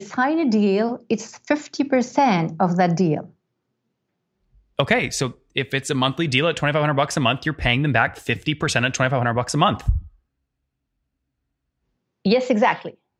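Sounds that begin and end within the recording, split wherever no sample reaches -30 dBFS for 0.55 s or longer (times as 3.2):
4.79–9.99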